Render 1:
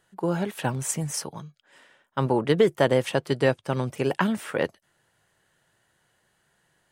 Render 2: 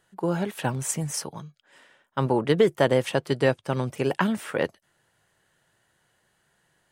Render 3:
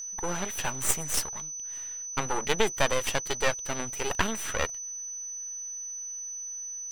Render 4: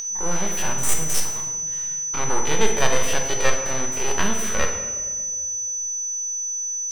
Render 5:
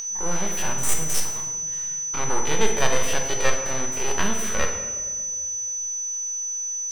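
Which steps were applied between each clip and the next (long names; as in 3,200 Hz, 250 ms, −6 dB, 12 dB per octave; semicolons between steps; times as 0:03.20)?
no processing that can be heard
tilt shelving filter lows −7 dB, about 650 Hz; half-wave rectification; steady tone 6,000 Hz −35 dBFS
spectrum averaged block by block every 50 ms; in parallel at −1 dB: upward compression, threshold −32 dBFS; on the sum: convolution reverb RT60 1.7 s, pre-delay 5 ms, DRR 2.5 dB; level −1 dB
noise in a band 470–7,300 Hz −59 dBFS; level −1.5 dB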